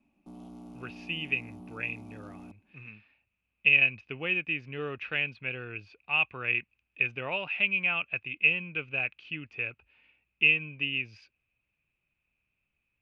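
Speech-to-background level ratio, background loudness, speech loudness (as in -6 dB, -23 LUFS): 20.0 dB, -48.0 LUFS, -28.0 LUFS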